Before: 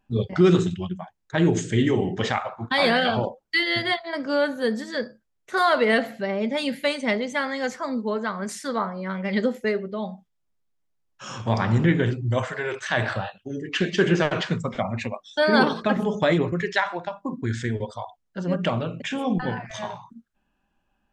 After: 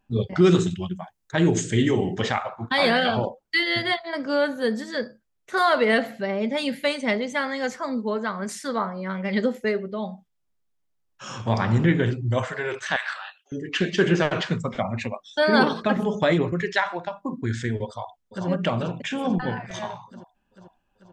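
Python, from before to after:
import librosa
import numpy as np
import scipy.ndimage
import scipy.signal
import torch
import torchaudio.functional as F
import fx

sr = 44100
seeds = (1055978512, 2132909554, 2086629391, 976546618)

y = fx.high_shelf(x, sr, hz=6200.0, db=8.5, at=(0.42, 2.21))
y = fx.highpass(y, sr, hz=1100.0, slope=24, at=(12.96, 13.52))
y = fx.echo_throw(y, sr, start_s=17.87, length_s=0.6, ms=440, feedback_pct=65, wet_db=-4.0)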